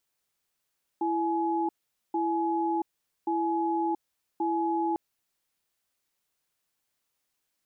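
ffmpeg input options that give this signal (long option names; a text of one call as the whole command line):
ffmpeg -f lavfi -i "aevalsrc='0.0422*(sin(2*PI*333*t)+sin(2*PI*844*t))*clip(min(mod(t,1.13),0.68-mod(t,1.13))/0.005,0,1)':duration=3.95:sample_rate=44100" out.wav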